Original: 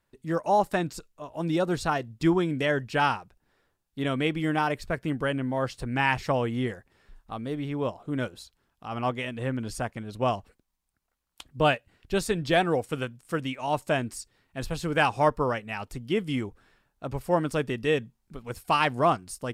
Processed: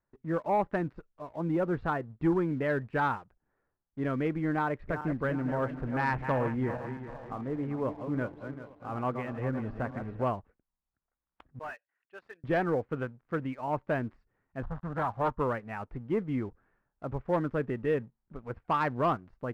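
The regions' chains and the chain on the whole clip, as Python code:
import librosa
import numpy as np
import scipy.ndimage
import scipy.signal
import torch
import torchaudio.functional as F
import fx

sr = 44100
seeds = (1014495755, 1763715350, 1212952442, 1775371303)

y = fx.chain(x, sr, fx.reverse_delay_fb(ms=196, feedback_pct=60, wet_db=-9.0),
    fx.echo_single(ms=858, db=-23.0), at=(4.62, 10.23))
y = fx.chain(y, sr, fx.envelope_sharpen(power=1.5),
    fx.highpass(hz=1400.0, slope=12),
    fx.overload_stage(gain_db=32.5), at=(11.59, 12.44))
y = fx.chain(y, sr, fx.dead_time(dead_ms=0.16),
    fx.fixed_phaser(hz=960.0, stages=4),
    fx.doppler_dist(depth_ms=0.47), at=(14.62, 15.38))
y = scipy.signal.sosfilt(scipy.signal.butter(4, 1800.0, 'lowpass', fs=sr, output='sos'), y)
y = fx.dynamic_eq(y, sr, hz=720.0, q=4.1, threshold_db=-38.0, ratio=4.0, max_db=-4)
y = fx.leveller(y, sr, passes=1)
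y = F.gain(torch.from_numpy(y), -6.0).numpy()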